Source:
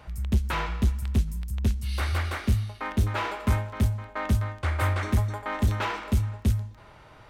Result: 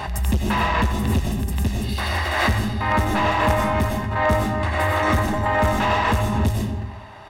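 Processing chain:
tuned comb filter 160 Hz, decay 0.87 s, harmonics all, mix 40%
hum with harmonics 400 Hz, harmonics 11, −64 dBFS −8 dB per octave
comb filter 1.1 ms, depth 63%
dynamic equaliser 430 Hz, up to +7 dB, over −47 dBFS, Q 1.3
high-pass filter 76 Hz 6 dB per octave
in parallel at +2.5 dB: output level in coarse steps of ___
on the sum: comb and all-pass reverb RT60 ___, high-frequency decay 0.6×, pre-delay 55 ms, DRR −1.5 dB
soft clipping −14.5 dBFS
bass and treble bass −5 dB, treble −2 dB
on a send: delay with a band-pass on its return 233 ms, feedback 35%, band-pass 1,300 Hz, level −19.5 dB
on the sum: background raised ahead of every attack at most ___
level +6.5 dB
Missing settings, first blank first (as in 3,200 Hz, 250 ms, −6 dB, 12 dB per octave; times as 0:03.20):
22 dB, 0.91 s, 40 dB per second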